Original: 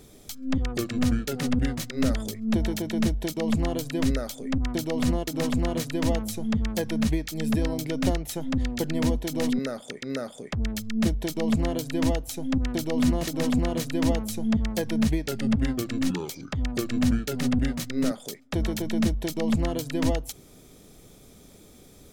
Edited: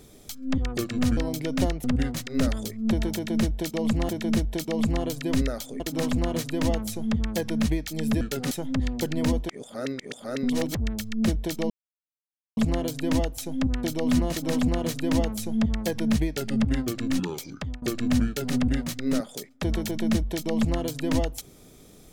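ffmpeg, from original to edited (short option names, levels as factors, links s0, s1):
-filter_complex "[0:a]asplit=11[s0][s1][s2][s3][s4][s5][s6][s7][s8][s9][s10];[s0]atrim=end=1.172[s11];[s1]atrim=start=7.618:end=8.292[s12];[s2]atrim=start=1.468:end=3.722[s13];[s3]atrim=start=2.778:end=4.492[s14];[s4]atrim=start=5.208:end=7.622[s15];[s5]atrim=start=1.168:end=1.472[s16];[s6]atrim=start=8.288:end=9.272[s17];[s7]atrim=start=9.268:end=10.532,asetpts=PTS-STARTPTS,areverse[s18];[s8]atrim=start=10.528:end=11.48,asetpts=PTS-STARTPTS,afade=t=out:st=0.948:d=0.004:c=hsin,apad=pad_dur=0.87[s19];[s9]atrim=start=11.48:end=16.73,asetpts=PTS-STARTPTS,afade=t=in:d=0.004:c=hsin,afade=t=out:st=4.99:d=0.26:silence=0.1[s20];[s10]atrim=start=16.73,asetpts=PTS-STARTPTS,afade=t=in:d=0.004:c=hsin:silence=0.1[s21];[s11][s12]acrossfade=d=0.004:c1=hsin:c2=hsin[s22];[s22][s13]acrossfade=d=0.004:c1=hsin:c2=hsin[s23];[s23][s14]acrossfade=d=0.004:c1=hsin:c2=hsin[s24];[s24][s15]acrossfade=d=0.004:c1=hsin:c2=hsin[s25];[s25][s16]acrossfade=d=0.004:c1=hsin:c2=hsin[s26];[s26][s17]acrossfade=d=0.004:c1=hsin:c2=hsin[s27];[s27][s18]acrossfade=d=0.004:c1=hsin:c2=hsin[s28];[s19][s20][s21]concat=n=3:v=0:a=1[s29];[s28][s29]acrossfade=d=0.004:c1=hsin:c2=hsin"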